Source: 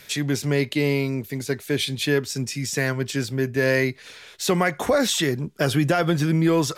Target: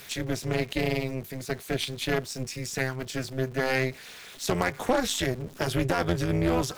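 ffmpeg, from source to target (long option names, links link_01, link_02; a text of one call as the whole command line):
ffmpeg -i in.wav -af "aeval=exprs='val(0)+0.5*0.0266*sgn(val(0))':channel_layout=same,aeval=exprs='0.422*(cos(1*acos(clip(val(0)/0.422,-1,1)))-cos(1*PI/2))+0.0841*(cos(2*acos(clip(val(0)/0.422,-1,1)))-cos(2*PI/2))+0.0668*(cos(5*acos(clip(val(0)/0.422,-1,1)))-cos(5*PI/2))+0.0668*(cos(7*acos(clip(val(0)/0.422,-1,1)))-cos(7*PI/2))':channel_layout=same,tremolo=f=260:d=0.947,volume=-3.5dB" out.wav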